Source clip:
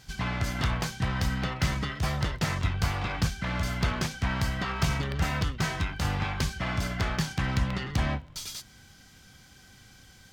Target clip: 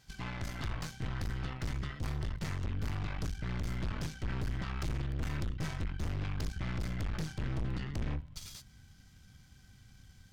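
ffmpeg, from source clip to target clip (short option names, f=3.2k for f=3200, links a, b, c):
-af "asubboost=boost=3.5:cutoff=210,aeval=exprs='(tanh(22.4*val(0)+0.75)-tanh(0.75))/22.4':c=same,volume=-6dB"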